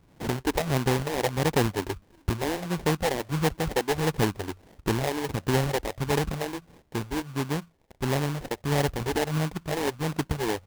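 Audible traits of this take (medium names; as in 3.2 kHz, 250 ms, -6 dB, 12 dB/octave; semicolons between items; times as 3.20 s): phasing stages 4, 1.5 Hz, lowest notch 140–2100 Hz; aliases and images of a low sample rate 1.3 kHz, jitter 20%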